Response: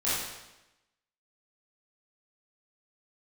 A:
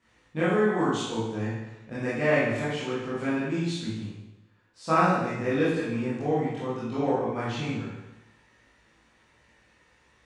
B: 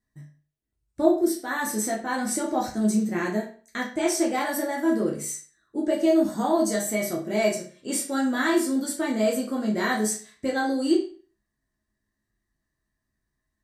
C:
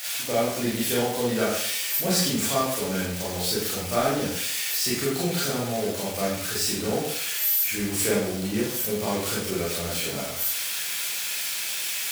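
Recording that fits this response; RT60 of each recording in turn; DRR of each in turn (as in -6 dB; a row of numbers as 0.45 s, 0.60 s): A; 1.0 s, 0.40 s, 0.60 s; -11.5 dB, -4.0 dB, -7.5 dB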